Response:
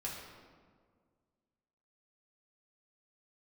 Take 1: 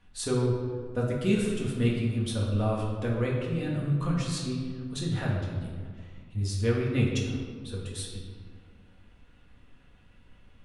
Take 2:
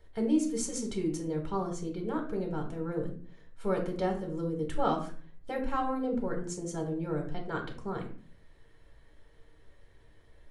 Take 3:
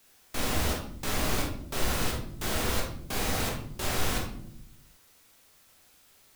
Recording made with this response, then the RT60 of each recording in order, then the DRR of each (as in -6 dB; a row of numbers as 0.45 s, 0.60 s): 1; 1.8 s, 0.40 s, no single decay rate; -4.5 dB, 1.5 dB, -1.5 dB